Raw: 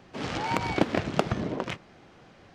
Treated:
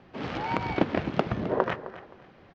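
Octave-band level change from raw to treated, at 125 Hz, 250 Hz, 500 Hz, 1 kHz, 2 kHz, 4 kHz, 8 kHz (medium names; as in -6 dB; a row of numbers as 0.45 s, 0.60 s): -0.5 dB, 0.0 dB, +1.5 dB, +0.5 dB, -1.0 dB, -4.5 dB, under -10 dB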